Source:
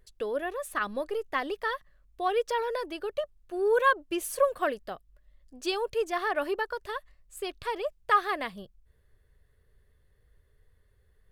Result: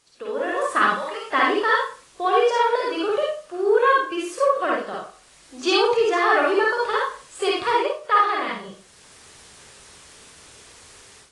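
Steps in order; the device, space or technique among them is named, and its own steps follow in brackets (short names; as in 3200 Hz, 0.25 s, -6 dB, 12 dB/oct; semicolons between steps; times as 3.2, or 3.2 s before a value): 0.88–1.3 HPF 950 Hz 12 dB/oct; dynamic EQ 1200 Hz, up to -6 dB, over -43 dBFS, Q 1.8; filmed off a television (BPF 170–7100 Hz; bell 1200 Hz +10 dB 0.54 oct; reverb RT60 0.40 s, pre-delay 46 ms, DRR -3 dB; white noise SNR 30 dB; AGC gain up to 16 dB; gain -5 dB; AAC 32 kbps 22050 Hz)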